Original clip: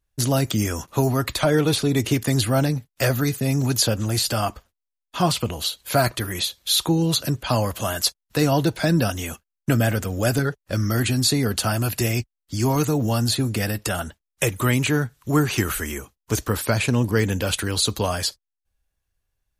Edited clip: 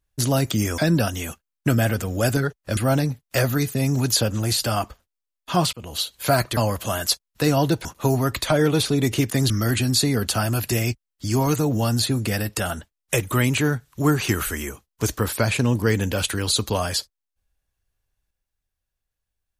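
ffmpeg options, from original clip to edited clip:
ffmpeg -i in.wav -filter_complex "[0:a]asplit=7[link_01][link_02][link_03][link_04][link_05][link_06][link_07];[link_01]atrim=end=0.782[link_08];[link_02]atrim=start=8.798:end=10.792[link_09];[link_03]atrim=start=2.428:end=5.39,asetpts=PTS-STARTPTS,afade=type=out:start_time=2.958:duration=0.004:curve=hsin[link_10];[link_04]atrim=start=5.39:end=6.232,asetpts=PTS-STARTPTS,afade=type=in:duration=0.27[link_11];[link_05]atrim=start=7.518:end=8.802[link_12];[link_06]atrim=start=0.778:end=2.432[link_13];[link_07]atrim=start=10.788[link_14];[link_08][link_09]acrossfade=duration=0.004:curve1=hsin:curve2=hsin[link_15];[link_10][link_11]concat=n=2:v=0:a=1[link_16];[link_15][link_16]acrossfade=duration=0.004:curve1=hsin:curve2=hsin[link_17];[link_17][link_12]acrossfade=duration=0.004:curve1=hsin:curve2=hsin[link_18];[link_18][link_13]acrossfade=duration=0.004:curve1=hsin:curve2=hsin[link_19];[link_19][link_14]acrossfade=duration=0.004:curve1=hsin:curve2=hsin" out.wav

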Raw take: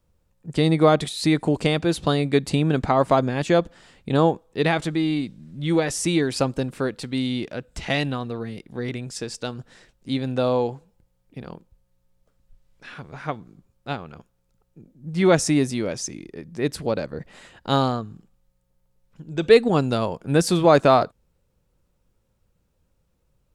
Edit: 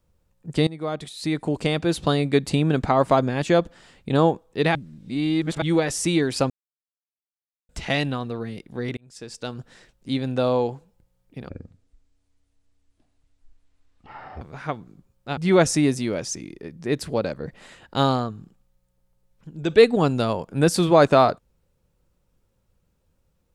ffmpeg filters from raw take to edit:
ffmpeg -i in.wav -filter_complex "[0:a]asplit=10[link_01][link_02][link_03][link_04][link_05][link_06][link_07][link_08][link_09][link_10];[link_01]atrim=end=0.67,asetpts=PTS-STARTPTS,afade=type=out:start_time=0.666:duration=0.004:curve=hsin:silence=0.1[link_11];[link_02]atrim=start=0.67:end=4.752,asetpts=PTS-STARTPTS,afade=type=in:duration=1.32:silence=0.1[link_12];[link_03]atrim=start=4.748:end=5.622,asetpts=PTS-STARTPTS,areverse[link_13];[link_04]atrim=start=5.618:end=6.5,asetpts=PTS-STARTPTS,afade=type=out:start_time=0.878:duration=0.004:curve=hsin[link_14];[link_05]atrim=start=6.5:end=7.69,asetpts=PTS-STARTPTS,volume=0[link_15];[link_06]atrim=start=7.69:end=8.97,asetpts=PTS-STARTPTS,afade=type=in:duration=0.004:curve=hsin,afade=type=out:start_time=1.276:duration=0.004:curve=hsin[link_16];[link_07]atrim=start=8.97:end=11.494,asetpts=PTS-STARTPTS,afade=type=in:duration=0.62[link_17];[link_08]atrim=start=11.49:end=13.01,asetpts=PTS-STARTPTS,asetrate=22932,aresample=44100[link_18];[link_09]atrim=start=13.006:end=13.972[link_19];[link_10]atrim=start=15.098[link_20];[link_11][link_12]concat=n=2:v=0:a=1[link_21];[link_21][link_13]acrossfade=duration=0.004:curve1=hsin:curve2=hsin[link_22];[link_14][link_15][link_16][link_17]concat=n=4:v=0:a=1[link_23];[link_22][link_23]acrossfade=duration=0.004:curve1=hsin:curve2=hsin[link_24];[link_24][link_18]acrossfade=duration=0.004:curve1=hsin:curve2=hsin[link_25];[link_25][link_19]acrossfade=duration=0.004:curve1=hsin:curve2=hsin[link_26];[link_26][link_20]acrossfade=duration=0.004:curve1=hsin:curve2=hsin" out.wav

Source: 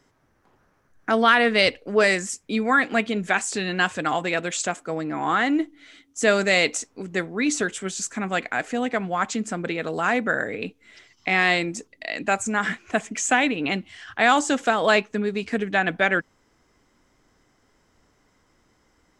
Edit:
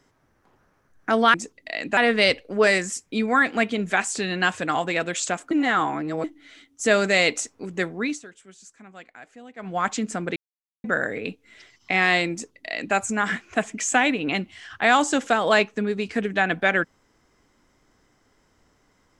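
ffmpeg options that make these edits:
ffmpeg -i in.wav -filter_complex "[0:a]asplit=9[link_01][link_02][link_03][link_04][link_05][link_06][link_07][link_08][link_09];[link_01]atrim=end=1.342[link_10];[link_02]atrim=start=11.688:end=12.322[link_11];[link_03]atrim=start=1.338:end=4.882[link_12];[link_04]atrim=start=4.878:end=5.612,asetpts=PTS-STARTPTS,areverse[link_13];[link_05]atrim=start=5.608:end=7.57,asetpts=PTS-STARTPTS,afade=type=out:start_time=1.762:duration=0.2:silence=0.112202[link_14];[link_06]atrim=start=7.57:end=8.94,asetpts=PTS-STARTPTS,volume=-19dB[link_15];[link_07]atrim=start=8.94:end=9.73,asetpts=PTS-STARTPTS,afade=type=in:duration=0.2:silence=0.112202,afade=type=out:start_time=0.786:duration=0.004:curve=hsin[link_16];[link_08]atrim=start=9.73:end=10.21,asetpts=PTS-STARTPTS,volume=0[link_17];[link_09]atrim=start=10.21,asetpts=PTS-STARTPTS,afade=type=in:duration=0.004:curve=hsin[link_18];[link_10][link_11]acrossfade=duration=0.004:curve1=hsin:curve2=hsin[link_19];[link_19][link_12]acrossfade=duration=0.004:curve1=hsin:curve2=hsin[link_20];[link_20][link_13]acrossfade=duration=0.004:curve1=hsin:curve2=hsin[link_21];[link_14][link_15][link_16][link_17][link_18]concat=n=5:v=0:a=1[link_22];[link_21][link_22]acrossfade=duration=0.004:curve1=hsin:curve2=hsin" out.wav

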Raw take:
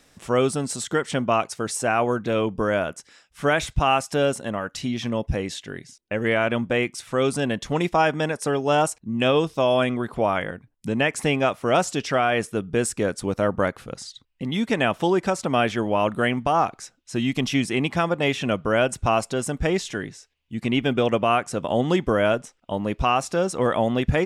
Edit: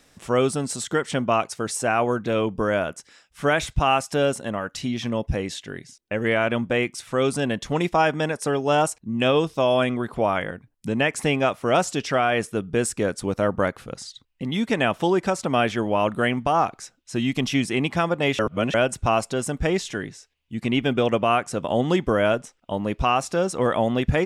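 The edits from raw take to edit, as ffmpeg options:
ffmpeg -i in.wav -filter_complex "[0:a]asplit=3[link_01][link_02][link_03];[link_01]atrim=end=18.392[link_04];[link_02]atrim=start=18.388:end=18.742,asetpts=PTS-STARTPTS,areverse[link_05];[link_03]atrim=start=18.738[link_06];[link_04][link_05]acrossfade=duration=0.004:curve1=hsin:curve2=hsin[link_07];[link_07][link_06]acrossfade=duration=0.004:curve1=hsin:curve2=hsin" out.wav

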